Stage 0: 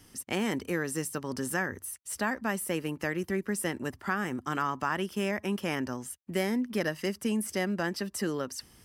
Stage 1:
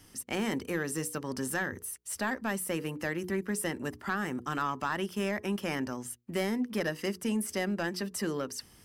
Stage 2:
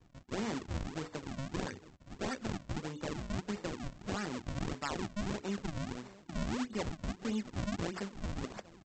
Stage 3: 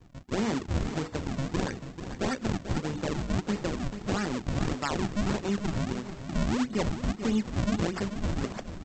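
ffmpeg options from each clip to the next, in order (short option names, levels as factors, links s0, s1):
-af "bandreject=f=60:t=h:w=6,bandreject=f=120:t=h:w=6,bandreject=f=180:t=h:w=6,bandreject=f=240:t=h:w=6,bandreject=f=300:t=h:w=6,bandreject=f=360:t=h:w=6,bandreject=f=420:t=h:w=6,bandreject=f=480:t=h:w=6,asoftclip=type=tanh:threshold=0.0944"
-filter_complex "[0:a]asplit=2[s0][s1];[s1]adelay=856,lowpass=f=1400:p=1,volume=0.106,asplit=2[s2][s3];[s3]adelay=856,lowpass=f=1400:p=1,volume=0.47,asplit=2[s4][s5];[s5]adelay=856,lowpass=f=1400:p=1,volume=0.47,asplit=2[s6][s7];[s7]adelay=856,lowpass=f=1400:p=1,volume=0.47[s8];[s0][s2][s4][s6][s8]amix=inputs=5:normalize=0,aresample=16000,acrusher=samples=22:mix=1:aa=0.000001:lfo=1:lforange=35.2:lforate=1.6,aresample=44100,volume=0.562"
-filter_complex "[0:a]lowshelf=f=490:g=3,asplit=2[s0][s1];[s1]aecho=0:1:439|878|1317:0.299|0.0925|0.0287[s2];[s0][s2]amix=inputs=2:normalize=0,volume=2"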